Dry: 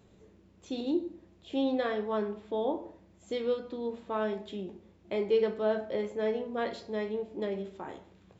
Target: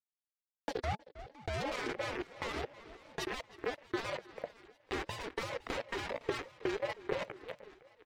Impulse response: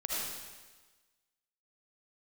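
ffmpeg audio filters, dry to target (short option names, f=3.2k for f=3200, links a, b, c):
-filter_complex "[0:a]acrusher=bits=4:mix=0:aa=0.000001,afftdn=nr=28:nf=-40,asplit=2[a][b];[b]adelay=326,lowpass=f=3.8k:p=1,volume=-23dB,asplit=2[c][d];[d]adelay=326,lowpass=f=3.8k:p=1,volume=0.29[e];[c][e]amix=inputs=2:normalize=0[f];[a][f]amix=inputs=2:normalize=0,acompressor=threshold=-34dB:ratio=16,agate=range=-34dB:threshold=-59dB:ratio=16:detection=peak,adynamicequalizer=threshold=0.00141:dfrequency=1500:dqfactor=1.4:tfrequency=1500:tqfactor=1.4:attack=5:release=100:ratio=0.375:range=3:mode=boostabove:tftype=bell,asplit=2[g][h];[h]aecho=0:1:531|1062|1593|2124:0.1|0.049|0.024|0.0118[i];[g][i]amix=inputs=2:normalize=0,asetrate=45938,aresample=44100,firequalizer=gain_entry='entry(120,0);entry(180,-26);entry(320,-11);entry(490,-28);entry(1300,-16);entry(4100,-13)':delay=0.05:min_phase=1,acontrast=37,aeval=exprs='val(0)*sin(2*PI*470*n/s+470*0.25/2.9*sin(2*PI*2.9*n/s))':c=same,volume=13dB"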